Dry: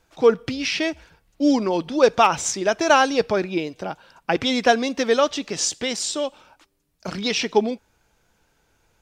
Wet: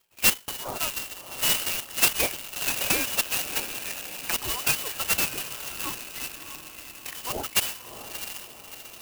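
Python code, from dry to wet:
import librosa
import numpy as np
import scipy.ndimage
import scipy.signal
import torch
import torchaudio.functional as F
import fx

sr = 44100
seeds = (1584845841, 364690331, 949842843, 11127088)

p1 = fx.dereverb_blind(x, sr, rt60_s=1.6)
p2 = fx.hum_notches(p1, sr, base_hz=50, count=6)
p3 = fx.env_phaser(p2, sr, low_hz=210.0, high_hz=1300.0, full_db=-19.0)
p4 = p3 + fx.echo_diffused(p3, sr, ms=661, feedback_pct=52, wet_db=-9.0, dry=0)
p5 = fx.freq_invert(p4, sr, carrier_hz=3200)
p6 = fx.clock_jitter(p5, sr, seeds[0], jitter_ms=0.077)
y = p6 * librosa.db_to_amplitude(-4.0)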